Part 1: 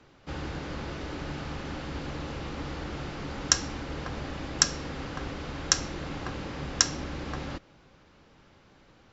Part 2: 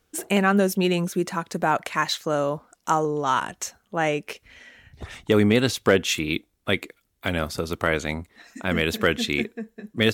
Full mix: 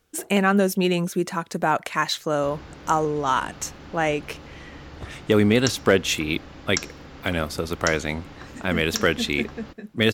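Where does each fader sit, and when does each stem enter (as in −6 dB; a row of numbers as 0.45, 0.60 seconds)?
−6.0, +0.5 decibels; 2.15, 0.00 seconds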